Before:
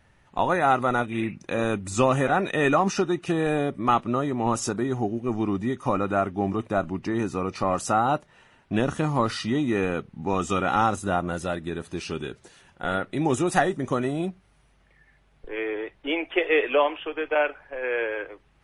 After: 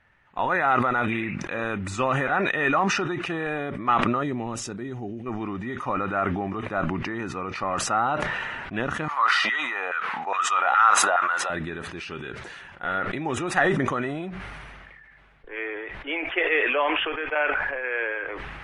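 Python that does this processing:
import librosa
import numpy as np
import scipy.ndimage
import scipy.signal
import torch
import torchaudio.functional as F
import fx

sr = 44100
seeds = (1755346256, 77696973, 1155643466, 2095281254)

y = fx.peak_eq(x, sr, hz=1200.0, db=-11.5, octaves=1.9, at=(4.23, 5.26))
y = fx.filter_lfo_highpass(y, sr, shape='saw_down', hz=2.4, low_hz=610.0, high_hz=1600.0, q=2.3, at=(9.08, 11.5))
y = fx.lowpass(y, sr, hz=3100.0, slope=6)
y = fx.peak_eq(y, sr, hz=1800.0, db=12.0, octaves=2.0)
y = fx.sustainer(y, sr, db_per_s=23.0)
y = F.gain(torch.from_numpy(y), -8.0).numpy()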